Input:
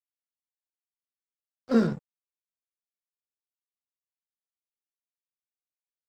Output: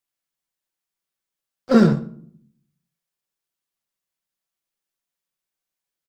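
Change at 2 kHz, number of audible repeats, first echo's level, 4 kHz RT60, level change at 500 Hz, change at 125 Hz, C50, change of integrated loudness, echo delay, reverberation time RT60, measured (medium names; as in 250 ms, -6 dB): +9.0 dB, 1, -23.0 dB, 0.40 s, +8.5 dB, +12.0 dB, 16.0 dB, +8.0 dB, 123 ms, 0.60 s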